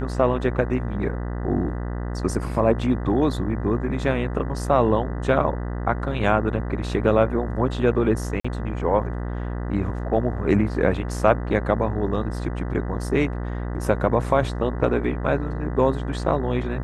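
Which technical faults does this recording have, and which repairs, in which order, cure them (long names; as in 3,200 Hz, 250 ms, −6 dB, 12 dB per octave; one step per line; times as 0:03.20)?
mains buzz 60 Hz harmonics 33 −28 dBFS
0:08.40–0:08.45: drop-out 45 ms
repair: hum removal 60 Hz, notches 33
repair the gap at 0:08.40, 45 ms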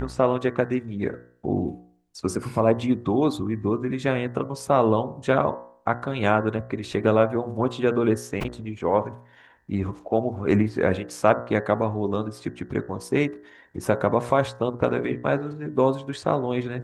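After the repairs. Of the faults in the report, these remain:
none of them is left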